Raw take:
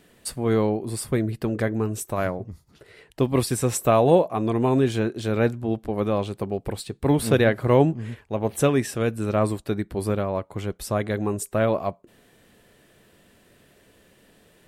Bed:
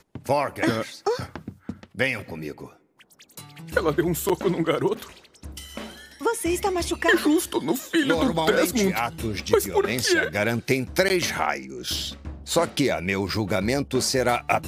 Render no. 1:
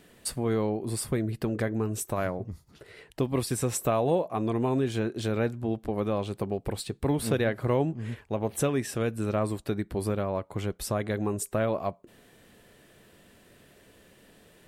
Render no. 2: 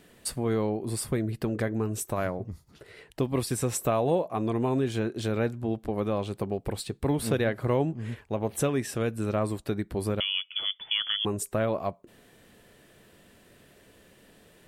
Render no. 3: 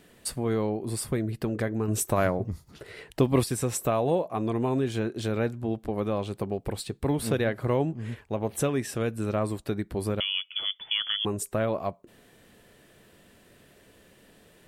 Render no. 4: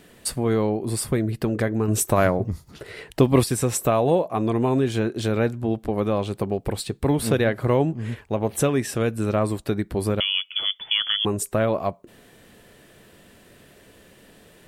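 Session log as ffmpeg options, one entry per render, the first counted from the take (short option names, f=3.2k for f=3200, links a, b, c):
-af "acompressor=threshold=-28dB:ratio=2"
-filter_complex "[0:a]asettb=1/sr,asplit=3[a][b][c];[a]atrim=end=10.204[d];[b]atrim=start=10.2:end=11.25,asetpts=PTS-STARTPTS,afade=t=in:d=0.004:c=qsin,afade=t=out:st=1.046:d=0.004:c=qsin,lowpass=f=3k:t=q:w=0.5098,lowpass=f=3k:t=q:w=0.6013,lowpass=f=3k:t=q:w=0.9,lowpass=f=3k:t=q:w=2.563,afreqshift=-3500[e];[c]atrim=start=11.246[f];[d][e]acrossfade=d=0.004:c1=hsin:c2=qsin[g];[g][f]acrossfade=d=0.004:c1=qsin:c2=hsin"
-filter_complex "[0:a]asettb=1/sr,asplit=3[a][b][c];[a]atrim=end=1.884[d];[b]atrim=start=1.88:end=3.44,asetpts=PTS-STARTPTS,afade=t=in:d=0.004:c=qsin,afade=t=out:st=1.556:d=0.004:c=qsin,acontrast=32[e];[c]atrim=start=3.436[f];[d][e]acrossfade=d=0.004:c1=hsin:c2=qsin[g];[g][f]acrossfade=d=0.004:c1=qsin:c2=hsin"
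-af "volume=5.5dB"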